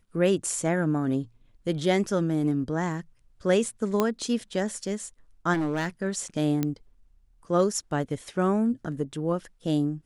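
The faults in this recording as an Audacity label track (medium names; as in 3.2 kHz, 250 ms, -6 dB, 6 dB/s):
4.000000	4.000000	pop -10 dBFS
5.530000	5.890000	clipped -23 dBFS
6.630000	6.630000	pop -13 dBFS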